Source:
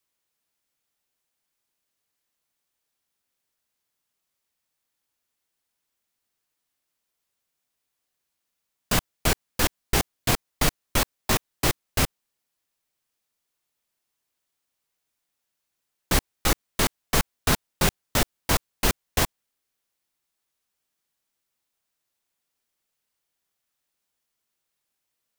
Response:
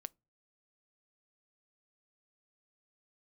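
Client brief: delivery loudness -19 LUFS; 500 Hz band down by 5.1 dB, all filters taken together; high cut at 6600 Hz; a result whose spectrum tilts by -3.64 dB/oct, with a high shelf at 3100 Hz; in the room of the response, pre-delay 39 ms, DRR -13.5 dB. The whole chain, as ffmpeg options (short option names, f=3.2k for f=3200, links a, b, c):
-filter_complex "[0:a]lowpass=6.6k,equalizer=f=500:t=o:g=-7,highshelf=f=3.1k:g=6.5,asplit=2[a][b];[1:a]atrim=start_sample=2205,adelay=39[c];[b][c]afir=irnorm=-1:irlink=0,volume=18dB[d];[a][d]amix=inputs=2:normalize=0,volume=-7dB"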